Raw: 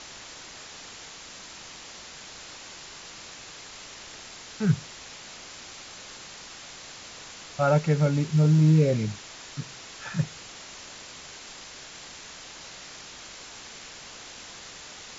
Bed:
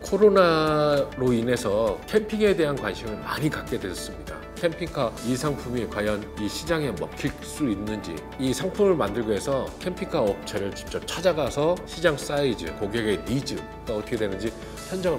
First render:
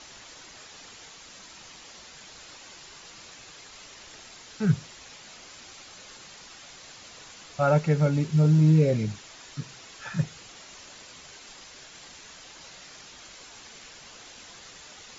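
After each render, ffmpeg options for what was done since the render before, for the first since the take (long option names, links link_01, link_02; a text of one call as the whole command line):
ffmpeg -i in.wav -af "afftdn=noise_reduction=6:noise_floor=-44" out.wav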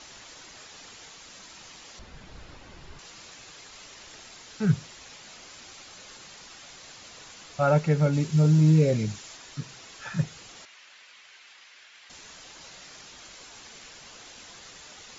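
ffmpeg -i in.wav -filter_complex "[0:a]asettb=1/sr,asplit=3[link_01][link_02][link_03];[link_01]atrim=end=1.994[link_04];[link_02]atrim=start=1.99:end=2.99,asetpts=PTS-STARTPTS,afade=type=in:duration=0.004:curve=qsin,afade=type=out:start_time=0.996:duration=0.004:curve=qsin,aemphasis=mode=reproduction:type=riaa[link_05];[link_03]atrim=start=2.986[link_06];[link_04][link_05]acrossfade=duration=0.004:curve1=hsin:curve2=qsin[link_07];[link_07][link_06]acrossfade=duration=0.004:curve1=qsin:curve2=hsin,asettb=1/sr,asplit=3[link_08][link_09][link_10];[link_08]atrim=end=8.134[link_11];[link_09]atrim=start=8.13:end=9.37,asetpts=PTS-STARTPTS,afade=type=in:duration=0.004:curve=qsin,afade=type=out:start_time=1.236:duration=0.004:curve=qsin,highshelf=frequency=6600:gain=9[link_12];[link_10]atrim=start=9.366[link_13];[link_11][link_12]acrossfade=duration=0.004:curve1=hsin:curve2=qsin[link_14];[link_14][link_13]acrossfade=duration=0.004:curve1=qsin:curve2=hsin,asettb=1/sr,asplit=3[link_15][link_16][link_17];[link_15]atrim=end=10.654[link_18];[link_16]atrim=start=10.65:end=12.1,asetpts=PTS-STARTPTS,afade=type=in:duration=0.004:curve=qsin,afade=type=out:start_time=1.446:duration=0.004:curve=qsin,bandpass=frequency=2200:width_type=q:width=1.2[link_19];[link_17]atrim=start=12.096[link_20];[link_18][link_19]acrossfade=duration=0.004:curve1=hsin:curve2=qsin[link_21];[link_21][link_20]acrossfade=duration=0.004:curve1=qsin:curve2=hsin" out.wav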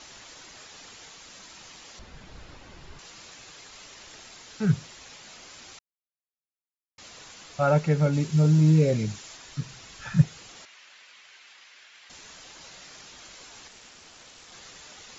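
ffmpeg -i in.wav -filter_complex "[0:a]asettb=1/sr,asplit=3[link_01][link_02][link_03];[link_01]atrim=end=9.274[link_04];[link_02]atrim=start=9.27:end=10.22,asetpts=PTS-STARTPTS,afade=type=in:duration=0.004:curve=qsin,afade=type=out:start_time=0.946:duration=0.004:curve=qsin,asubboost=boost=10.5:cutoff=200[link_05];[link_03]atrim=start=10.216[link_06];[link_04][link_05]acrossfade=duration=0.004:curve1=hsin:curve2=qsin[link_07];[link_07][link_06]acrossfade=duration=0.004:curve1=qsin:curve2=hsin,asettb=1/sr,asplit=3[link_08][link_09][link_10];[link_08]atrim=end=13.684[link_11];[link_09]atrim=start=13.68:end=14.52,asetpts=PTS-STARTPTS,afade=type=in:duration=0.004:curve=qsin,afade=type=out:start_time=0.836:duration=0.004:curve=qsin,aeval=exprs='val(0)*sin(2*PI*230*n/s)':channel_layout=same[link_12];[link_10]atrim=start=14.516[link_13];[link_11][link_12]acrossfade=duration=0.004:curve1=hsin:curve2=qsin[link_14];[link_14][link_13]acrossfade=duration=0.004:curve1=qsin:curve2=hsin,asplit=3[link_15][link_16][link_17];[link_15]atrim=end=5.79,asetpts=PTS-STARTPTS,afade=type=out:start_time=5.786:duration=0.004:curve=hsin[link_18];[link_16]atrim=start=5.79:end=6.98,asetpts=PTS-STARTPTS,volume=0[link_19];[link_17]atrim=start=6.98,asetpts=PTS-STARTPTS,afade=type=in:duration=0.004:curve=hsin[link_20];[link_18][link_19][link_20]concat=n=3:v=0:a=1" out.wav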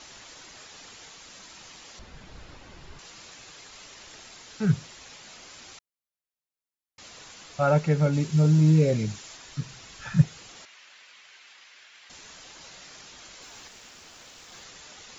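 ffmpeg -i in.wav -filter_complex "[0:a]asettb=1/sr,asplit=3[link_01][link_02][link_03];[link_01]atrim=end=13.424[link_04];[link_02]atrim=start=13.42:end=14.64,asetpts=PTS-STARTPTS,afade=type=in:duration=0.004:curve=qsin,afade=type=out:start_time=1.216:duration=0.004:curve=qsin,aeval=exprs='val(0)+0.5*0.00119*sgn(val(0))':channel_layout=same[link_05];[link_03]atrim=start=14.636[link_06];[link_04][link_05]acrossfade=duration=0.004:curve1=hsin:curve2=qsin[link_07];[link_07][link_06]acrossfade=duration=0.004:curve1=qsin:curve2=hsin" out.wav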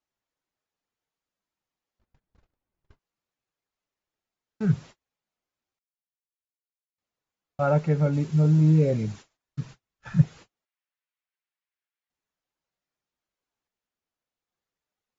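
ffmpeg -i in.wav -af "agate=range=-39dB:threshold=-40dB:ratio=16:detection=peak,highshelf=frequency=2200:gain=-11" out.wav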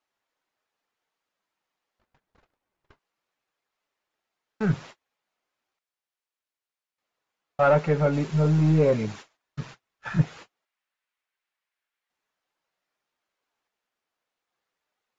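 ffmpeg -i in.wav -filter_complex "[0:a]aeval=exprs='if(lt(val(0),0),0.708*val(0),val(0))':channel_layout=same,asplit=2[link_01][link_02];[link_02]highpass=frequency=720:poles=1,volume=17dB,asoftclip=type=tanh:threshold=-7dB[link_03];[link_01][link_03]amix=inputs=2:normalize=0,lowpass=frequency=2600:poles=1,volume=-6dB" out.wav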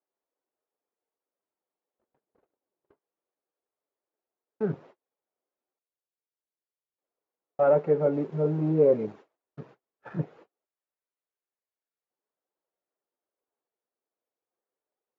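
ffmpeg -i in.wav -filter_complex "[0:a]asplit=2[link_01][link_02];[link_02]acrusher=bits=4:mix=0:aa=0.5,volume=-9dB[link_03];[link_01][link_03]amix=inputs=2:normalize=0,bandpass=frequency=420:width_type=q:width=1.6:csg=0" out.wav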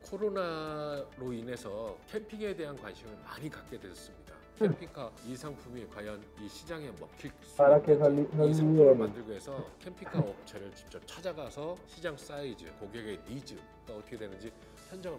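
ffmpeg -i in.wav -i bed.wav -filter_complex "[1:a]volume=-16.5dB[link_01];[0:a][link_01]amix=inputs=2:normalize=0" out.wav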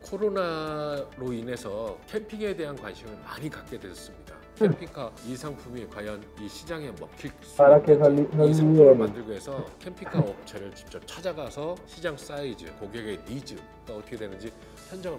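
ffmpeg -i in.wav -af "volume=6.5dB" out.wav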